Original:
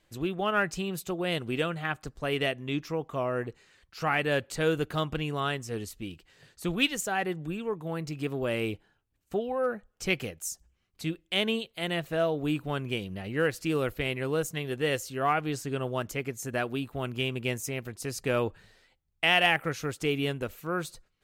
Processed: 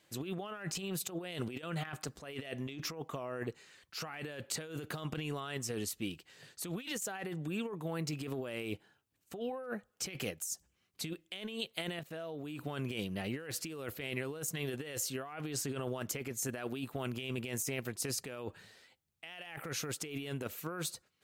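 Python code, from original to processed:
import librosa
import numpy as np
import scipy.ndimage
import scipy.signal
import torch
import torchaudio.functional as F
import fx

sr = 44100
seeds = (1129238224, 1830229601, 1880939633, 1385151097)

y = fx.transient(x, sr, attack_db=9, sustain_db=4, at=(0.65, 2.98), fade=0.02)
y = fx.level_steps(y, sr, step_db=21, at=(11.99, 12.59))
y = scipy.signal.sosfilt(scipy.signal.butter(2, 120.0, 'highpass', fs=sr, output='sos'), y)
y = fx.high_shelf(y, sr, hz=3500.0, db=5.0)
y = fx.over_compress(y, sr, threshold_db=-35.0, ratio=-1.0)
y = y * librosa.db_to_amplitude(-5.0)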